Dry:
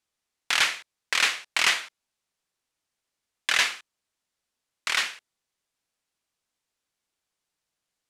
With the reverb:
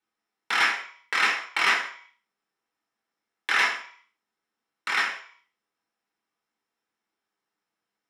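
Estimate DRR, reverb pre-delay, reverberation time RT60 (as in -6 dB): -2.5 dB, 3 ms, 0.50 s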